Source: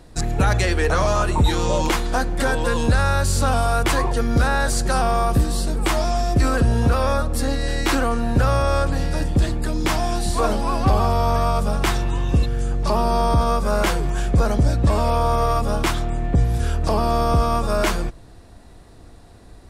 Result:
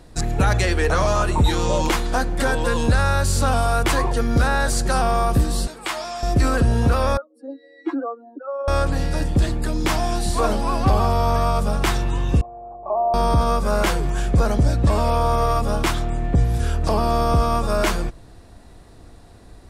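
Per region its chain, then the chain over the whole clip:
5.67–6.23 s: high-pass 1.2 kHz 6 dB/octave + treble shelf 8.5 kHz -8 dB + band-stop 5.9 kHz, Q 22
7.17–8.68 s: spectral contrast enhancement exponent 2.6 + steep high-pass 270 Hz 96 dB/octave
12.41–13.14 s: cascade formant filter a + small resonant body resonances 380/600 Hz, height 14 dB, ringing for 25 ms
whole clip: none

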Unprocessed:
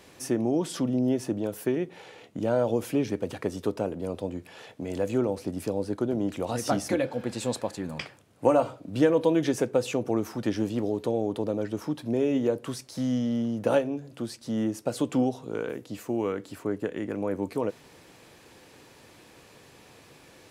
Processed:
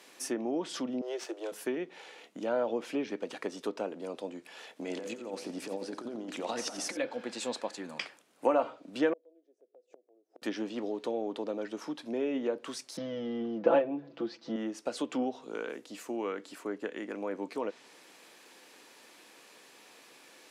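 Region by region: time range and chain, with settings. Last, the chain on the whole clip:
1.01–1.52 s: steep high-pass 330 Hz 96 dB/octave + treble shelf 5.7 kHz +5 dB + sliding maximum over 3 samples
4.76–6.97 s: compressor with a negative ratio -30 dBFS, ratio -0.5 + feedback delay 87 ms, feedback 52%, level -13 dB
9.13–10.42 s: FFT filter 140 Hz 0 dB, 360 Hz +15 dB, 680 Hz +8 dB, 990 Hz -21 dB, 2.9 kHz -19 dB, 7.9 kHz -5 dB + inverted gate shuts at -16 dBFS, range -36 dB + band-pass 630–4300 Hz
12.97–14.56 s: low-pass 5.2 kHz 24 dB/octave + tilt shelf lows +5.5 dB, about 1.1 kHz + comb 6 ms, depth 80%
whole clip: low-pass that closes with the level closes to 2.9 kHz, closed at -21 dBFS; high-pass 240 Hz 24 dB/octave; peaking EQ 350 Hz -6.5 dB 2.6 oct

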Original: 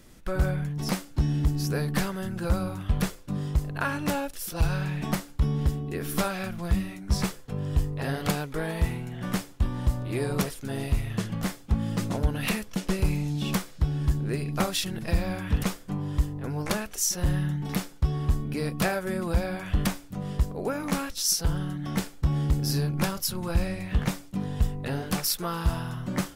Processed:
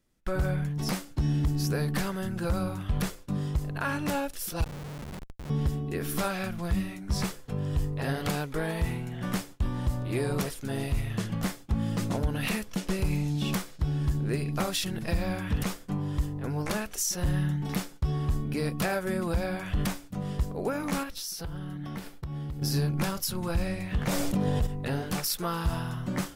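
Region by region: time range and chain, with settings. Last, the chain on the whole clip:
4.64–5.50 s: treble shelf 2.4 kHz +5 dB + compression 2.5:1, threshold -40 dBFS + Schmitt trigger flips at -36.5 dBFS
21.03–22.62 s: peaking EQ 7.2 kHz -6.5 dB 0.86 oct + compression, threshold -33 dBFS
24.07–24.67 s: peaking EQ 560 Hz +7 dB 0.74 oct + level flattener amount 70%
whole clip: gate with hold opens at -36 dBFS; peak limiter -18.5 dBFS

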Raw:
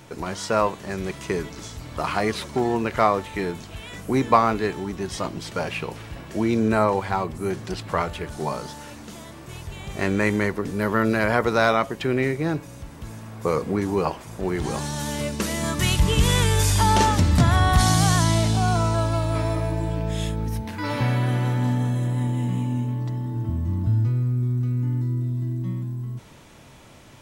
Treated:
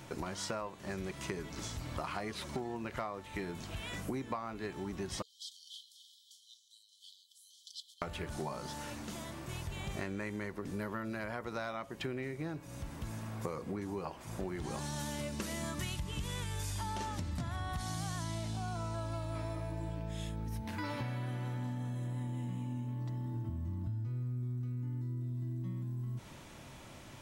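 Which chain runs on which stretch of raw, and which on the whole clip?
5.22–8.02 s: treble shelf 5.2 kHz -10.5 dB + compression 3:1, threshold -26 dBFS + brick-wall FIR high-pass 3 kHz
whole clip: band-stop 450 Hz, Q 12; compression 10:1, threshold -32 dBFS; trim -3.5 dB

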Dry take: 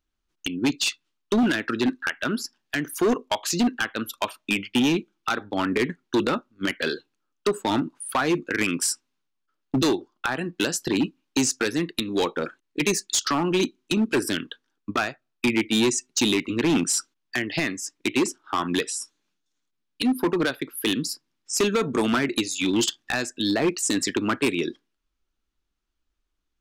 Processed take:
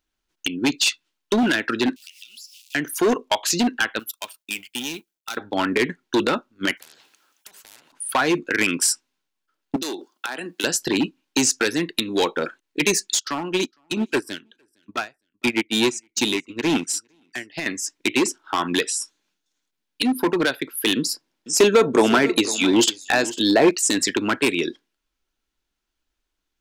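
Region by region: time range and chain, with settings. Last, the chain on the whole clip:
1.96–2.75 s: jump at every zero crossing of -39 dBFS + elliptic high-pass 2.6 kHz + compression 4:1, threshold -46 dBFS
3.99–5.37 s: companding laws mixed up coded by A + pre-emphasis filter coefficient 0.8 + tape noise reduction on one side only decoder only
6.77–7.92 s: high-pass 860 Hz 6 dB/octave + compression 2.5:1, threshold -48 dBFS + spectrum-flattening compressor 10:1
9.76–10.64 s: treble shelf 4.8 kHz +11 dB + compression 12:1, threshold -28 dBFS + high-pass 200 Hz 24 dB/octave
13.14–17.66 s: feedback delay 460 ms, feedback 26%, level -21 dB + upward expansion 2.5:1, over -32 dBFS
20.96–23.71 s: peaking EQ 540 Hz +6.5 dB 1.9 oct + delay 500 ms -16.5 dB
whole clip: bass shelf 260 Hz -8 dB; band-stop 1.2 kHz, Q 10; trim +5 dB

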